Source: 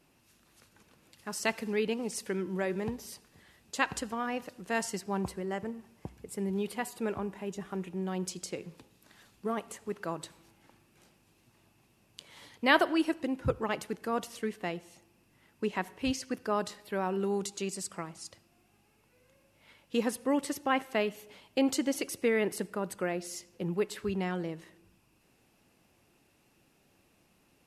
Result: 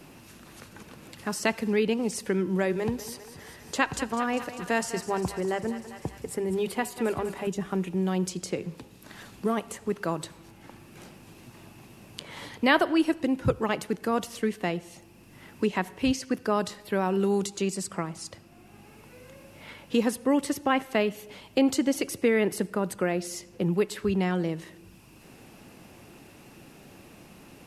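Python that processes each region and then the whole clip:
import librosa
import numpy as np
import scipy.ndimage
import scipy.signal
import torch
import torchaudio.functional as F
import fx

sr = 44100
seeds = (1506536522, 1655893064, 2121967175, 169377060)

y = fx.chain(x, sr, fx.notch(hz=200.0, q=5.7),
    fx.echo_thinned(ms=199, feedback_pct=65, hz=470.0, wet_db=-13), at=(2.72, 7.47))
y = fx.low_shelf(y, sr, hz=270.0, db=5.0)
y = fx.band_squash(y, sr, depth_pct=40)
y = F.gain(torch.from_numpy(y), 4.5).numpy()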